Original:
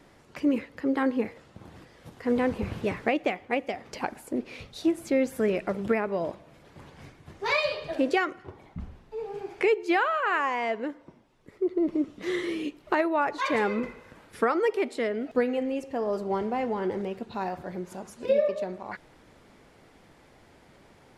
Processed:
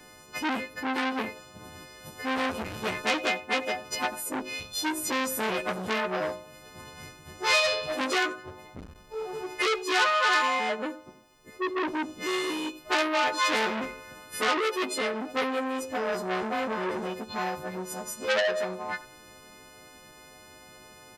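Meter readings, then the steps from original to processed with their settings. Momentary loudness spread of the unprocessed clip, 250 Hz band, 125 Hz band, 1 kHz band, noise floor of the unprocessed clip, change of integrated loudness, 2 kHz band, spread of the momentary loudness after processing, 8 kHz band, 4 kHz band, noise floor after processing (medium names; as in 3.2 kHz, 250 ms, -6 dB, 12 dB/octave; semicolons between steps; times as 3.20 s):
12 LU, -5.0 dB, -3.5 dB, +2.0 dB, -57 dBFS, 0.0 dB, +4.5 dB, 19 LU, +14.0 dB, +10.0 dB, -52 dBFS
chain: partials quantised in pitch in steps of 3 st; speakerphone echo 90 ms, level -16 dB; transformer saturation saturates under 4 kHz; trim +2.5 dB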